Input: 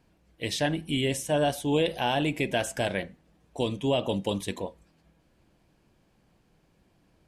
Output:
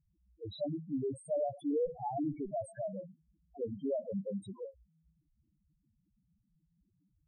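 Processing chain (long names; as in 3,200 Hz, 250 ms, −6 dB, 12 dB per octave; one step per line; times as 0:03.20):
one-sided soft clipper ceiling −22.5 dBFS
0:01.84–0:02.69: low-shelf EQ 88 Hz +10.5 dB
spectral peaks only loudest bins 2
level −2.5 dB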